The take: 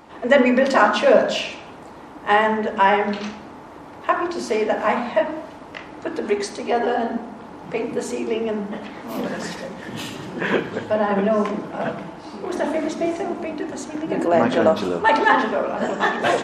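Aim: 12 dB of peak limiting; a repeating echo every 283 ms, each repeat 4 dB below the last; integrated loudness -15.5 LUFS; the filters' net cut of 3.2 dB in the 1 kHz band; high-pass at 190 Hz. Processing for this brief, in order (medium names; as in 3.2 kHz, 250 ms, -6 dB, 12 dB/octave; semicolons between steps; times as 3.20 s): high-pass 190 Hz; peaking EQ 1 kHz -4 dB; peak limiter -15 dBFS; feedback delay 283 ms, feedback 63%, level -4 dB; trim +9 dB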